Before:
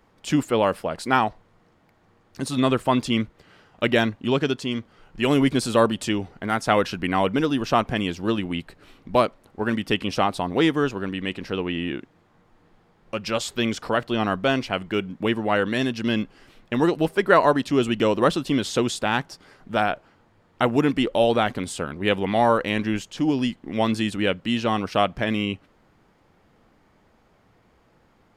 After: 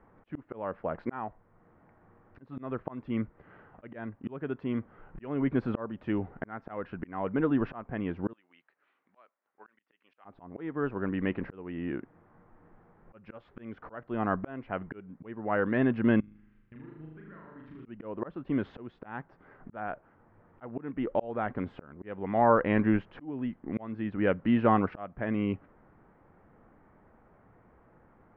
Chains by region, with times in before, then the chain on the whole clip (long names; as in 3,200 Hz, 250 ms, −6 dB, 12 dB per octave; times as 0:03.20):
0:08.33–0:10.25: high-pass filter 270 Hz 6 dB per octave + first difference
0:16.20–0:17.86: downward compressor 4 to 1, threshold −27 dBFS + guitar amp tone stack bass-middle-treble 6-0-2 + flutter between parallel walls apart 6.6 metres, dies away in 1.1 s
whole clip: volume swells 691 ms; low-pass filter 1,800 Hz 24 dB per octave